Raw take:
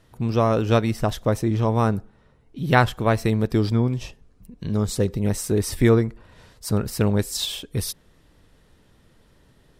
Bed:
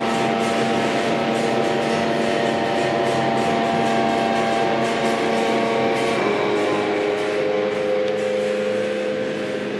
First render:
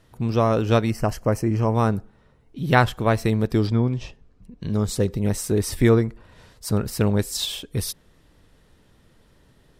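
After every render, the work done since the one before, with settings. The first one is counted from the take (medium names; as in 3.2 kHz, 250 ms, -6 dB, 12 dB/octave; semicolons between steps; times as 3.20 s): 0.90–1.75 s: Butterworth band-stop 3.6 kHz, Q 2.8; 3.67–4.63 s: distance through air 73 m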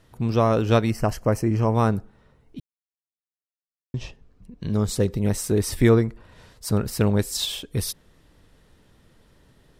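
2.60–3.94 s: mute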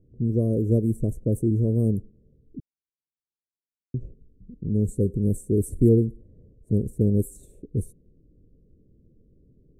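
level-controlled noise filter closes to 990 Hz, open at -16.5 dBFS; inverse Chebyshev band-stop 810–5300 Hz, stop band 40 dB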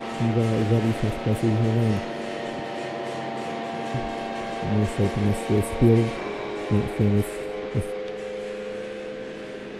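add bed -11 dB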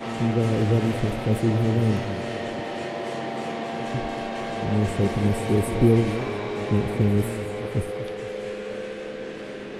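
pre-echo 145 ms -15.5 dB; modulated delay 231 ms, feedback 49%, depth 216 cents, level -12 dB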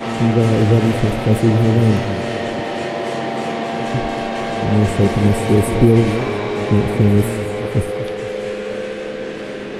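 trim +8 dB; peak limiter -2 dBFS, peak gain reduction 3 dB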